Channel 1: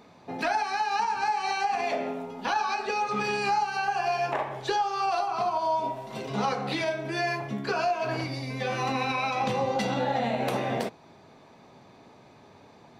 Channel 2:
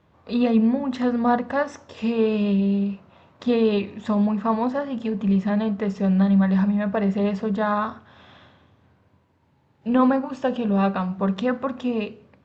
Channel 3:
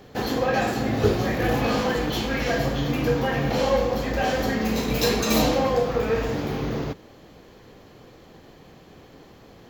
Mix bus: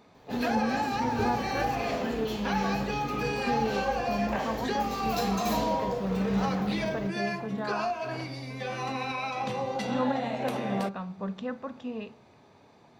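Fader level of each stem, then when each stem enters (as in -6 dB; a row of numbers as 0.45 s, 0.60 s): -4.5 dB, -11.5 dB, -11.0 dB; 0.00 s, 0.00 s, 0.15 s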